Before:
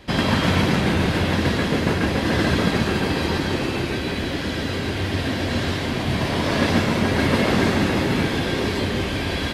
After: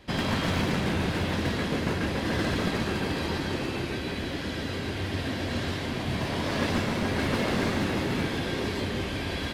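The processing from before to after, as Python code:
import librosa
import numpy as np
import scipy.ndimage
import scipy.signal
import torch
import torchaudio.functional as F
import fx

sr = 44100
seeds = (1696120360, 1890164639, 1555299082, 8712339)

y = np.minimum(x, 2.0 * 10.0 ** (-15.0 / 20.0) - x)
y = y * 10.0 ** (-7.0 / 20.0)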